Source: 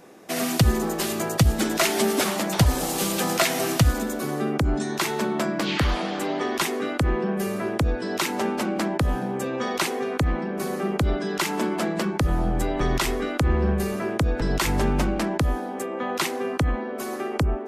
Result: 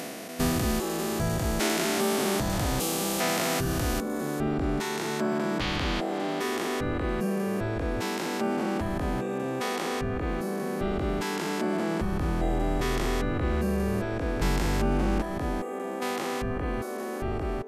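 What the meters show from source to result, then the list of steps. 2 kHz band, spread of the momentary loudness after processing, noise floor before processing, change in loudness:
-4.0 dB, 5 LU, -31 dBFS, -4.0 dB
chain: stepped spectrum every 0.4 s; reverb removal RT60 0.92 s; gain +2 dB

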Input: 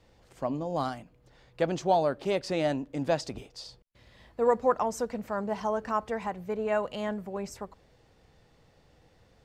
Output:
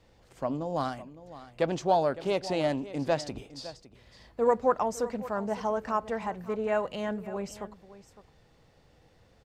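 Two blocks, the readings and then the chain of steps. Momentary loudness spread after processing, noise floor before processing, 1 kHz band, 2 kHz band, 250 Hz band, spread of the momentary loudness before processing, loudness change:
17 LU, -63 dBFS, 0.0 dB, 0.0 dB, 0.0 dB, 16 LU, 0.0 dB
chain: on a send: echo 0.559 s -16 dB; on the sum: Doppler distortion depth 0.11 ms

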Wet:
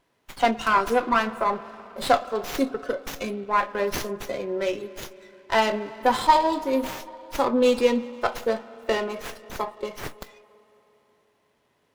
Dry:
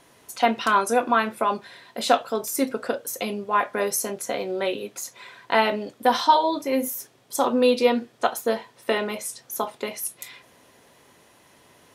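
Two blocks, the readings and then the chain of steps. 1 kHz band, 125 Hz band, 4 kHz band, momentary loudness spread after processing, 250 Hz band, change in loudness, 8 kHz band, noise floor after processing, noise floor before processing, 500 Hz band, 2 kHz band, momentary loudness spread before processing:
-0.5 dB, n/a, -2.5 dB, 14 LU, -0.5 dB, -0.5 dB, -9.0 dB, -69 dBFS, -57 dBFS, -0.5 dB, -0.5 dB, 12 LU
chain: spectral noise reduction 14 dB; spring tank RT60 3.6 s, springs 55/59 ms, chirp 40 ms, DRR 15 dB; running maximum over 5 samples

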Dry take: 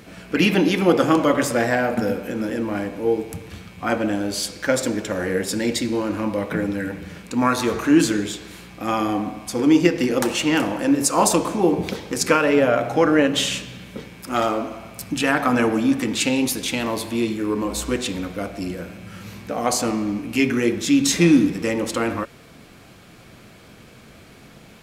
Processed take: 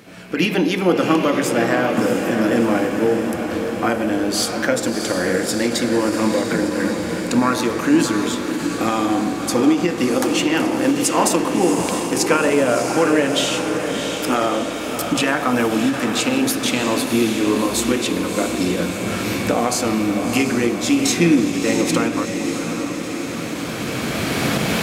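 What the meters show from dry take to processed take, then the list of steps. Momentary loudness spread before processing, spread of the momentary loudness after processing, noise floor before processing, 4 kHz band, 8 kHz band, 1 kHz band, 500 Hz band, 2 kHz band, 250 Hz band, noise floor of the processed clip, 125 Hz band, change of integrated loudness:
13 LU, 6 LU, -47 dBFS, +3.5 dB, +3.0 dB, +2.5 dB, +2.5 dB, +3.0 dB, +2.5 dB, -26 dBFS, +2.0 dB, +2.0 dB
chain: recorder AGC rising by 11 dB/s; HPF 98 Hz 12 dB/oct; notches 50/100/150/200 Hz; on a send: diffused feedback echo 0.671 s, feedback 67%, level -6.5 dB; on the sum: ending taper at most 130 dB/s

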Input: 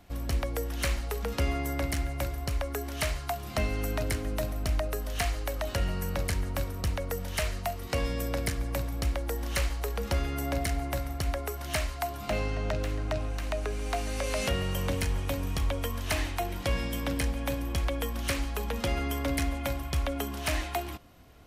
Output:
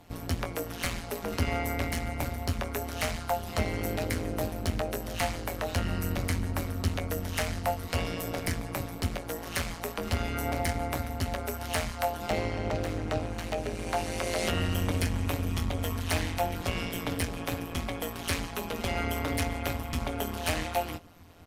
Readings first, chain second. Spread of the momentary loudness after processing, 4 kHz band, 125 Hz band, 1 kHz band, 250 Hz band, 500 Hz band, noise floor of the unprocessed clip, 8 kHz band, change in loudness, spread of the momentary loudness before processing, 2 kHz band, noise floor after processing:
4 LU, +0.5 dB, 0.0 dB, +2.5 dB, +1.5 dB, +0.5 dB, -38 dBFS, 0.0 dB, 0.0 dB, 3 LU, +1.0 dB, -40 dBFS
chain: added harmonics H 5 -19 dB, 8 -28 dB, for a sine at -15 dBFS; early reflections 10 ms -3.5 dB, 23 ms -8.5 dB; AM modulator 170 Hz, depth 85%

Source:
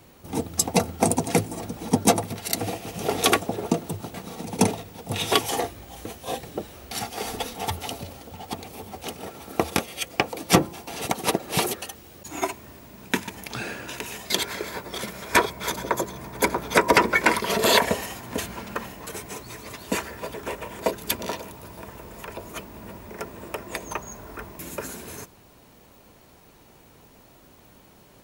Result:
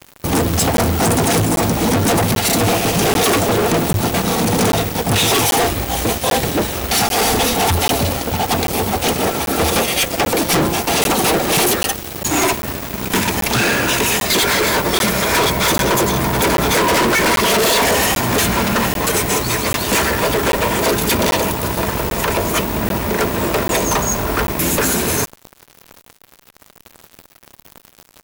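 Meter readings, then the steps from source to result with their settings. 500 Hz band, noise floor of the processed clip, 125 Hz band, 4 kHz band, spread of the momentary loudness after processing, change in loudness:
+10.5 dB, -49 dBFS, +13.5 dB, +11.0 dB, 5 LU, +10.5 dB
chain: fuzz box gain 41 dB, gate -46 dBFS; crackling interface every 0.79 s, samples 512, zero, from 0.77

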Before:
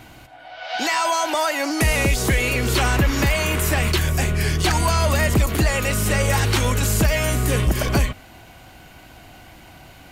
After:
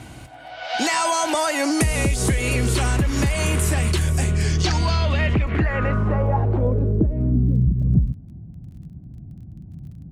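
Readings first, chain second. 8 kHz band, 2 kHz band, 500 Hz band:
-2.5 dB, -4.5 dB, -2.0 dB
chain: HPF 48 Hz; low shelf 360 Hz +8.5 dB; compressor, threshold -17 dBFS, peak gain reduction 10.5 dB; low-pass sweep 9400 Hz -> 170 Hz, 4.23–7.7; crackle 25/s -44 dBFS

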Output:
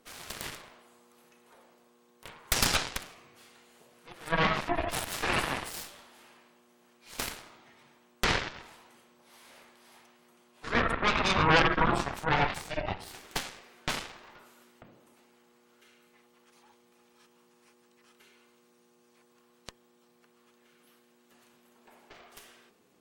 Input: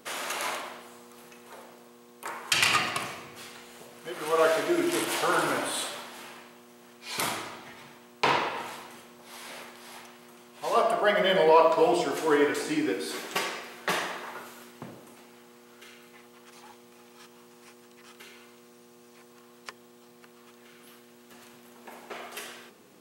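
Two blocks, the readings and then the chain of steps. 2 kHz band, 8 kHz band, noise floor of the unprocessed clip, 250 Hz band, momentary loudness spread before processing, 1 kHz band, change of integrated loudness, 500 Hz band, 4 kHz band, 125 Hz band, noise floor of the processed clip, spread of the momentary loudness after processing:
-1.0 dB, -2.5 dB, -55 dBFS, -4.0 dB, 23 LU, -3.5 dB, -3.0 dB, -9.5 dB, -2.0 dB, +8.0 dB, -65 dBFS, 18 LU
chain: half-wave gain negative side -7 dB; spectral gate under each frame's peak -30 dB strong; added harmonics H 4 -9 dB, 7 -22 dB, 8 -13 dB, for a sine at -6.5 dBFS

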